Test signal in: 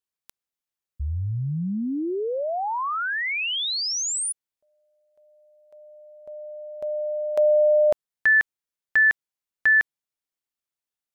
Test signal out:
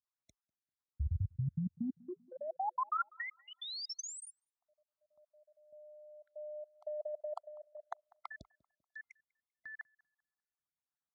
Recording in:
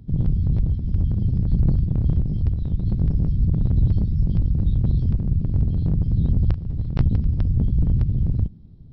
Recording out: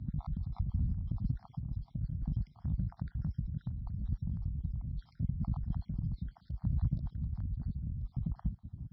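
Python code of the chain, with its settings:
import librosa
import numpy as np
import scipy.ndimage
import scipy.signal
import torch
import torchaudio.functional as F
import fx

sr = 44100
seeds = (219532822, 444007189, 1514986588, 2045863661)

y = fx.spec_dropout(x, sr, seeds[0], share_pct=53)
y = scipy.signal.sosfilt(scipy.signal.butter(4, 46.0, 'highpass', fs=sr, output='sos'), y)
y = fx.notch(y, sr, hz=410.0, q=12.0)
y = fx.dynamic_eq(y, sr, hz=320.0, q=4.1, threshold_db=-47.0, ratio=6.0, max_db=-5)
y = fx.over_compress(y, sr, threshold_db=-30.0, ratio=-1.0)
y = fx.air_absorb(y, sr, metres=130.0)
y = fx.fixed_phaser(y, sr, hz=1100.0, stages=4)
y = fx.echo_tape(y, sr, ms=196, feedback_pct=45, wet_db=-21.5, lp_hz=1100.0, drive_db=16.0, wow_cents=12)
y = y * 10.0 ** (-4.0 / 20.0)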